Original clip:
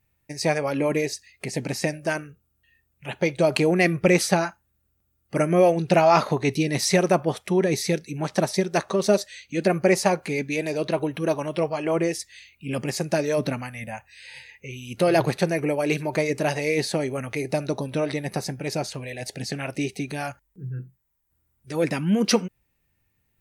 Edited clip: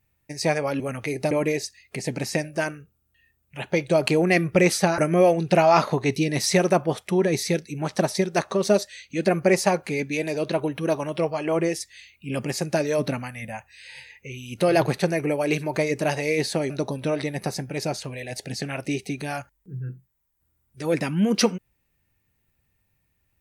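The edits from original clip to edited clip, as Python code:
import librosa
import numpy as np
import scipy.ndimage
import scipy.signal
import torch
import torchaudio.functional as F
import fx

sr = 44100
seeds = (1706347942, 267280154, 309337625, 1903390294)

y = fx.edit(x, sr, fx.cut(start_s=4.47, length_s=0.9),
    fx.move(start_s=17.09, length_s=0.51, to_s=0.8), tone=tone)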